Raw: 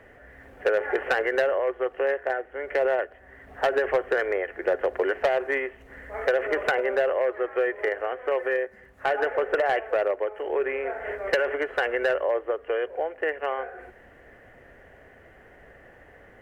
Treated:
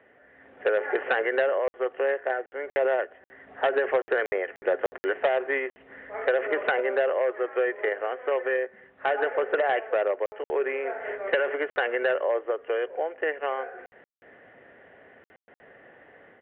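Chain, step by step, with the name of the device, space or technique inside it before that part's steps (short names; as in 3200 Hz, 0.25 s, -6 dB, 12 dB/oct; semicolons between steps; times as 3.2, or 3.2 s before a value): call with lost packets (HPF 180 Hz 12 dB/oct; downsampling 8000 Hz; AGC gain up to 6 dB; packet loss packets of 60 ms random); gain -6.5 dB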